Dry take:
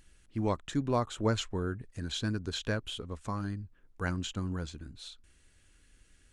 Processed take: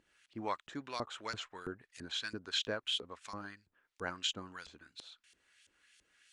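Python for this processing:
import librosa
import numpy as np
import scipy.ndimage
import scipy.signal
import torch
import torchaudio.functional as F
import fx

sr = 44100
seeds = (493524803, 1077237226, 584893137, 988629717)

y = fx.tilt_shelf(x, sr, db=-6.5, hz=1200.0)
y = fx.filter_lfo_bandpass(y, sr, shape='saw_up', hz=3.0, low_hz=350.0, high_hz=4500.0, q=0.9)
y = y * librosa.db_to_amplitude(2.0)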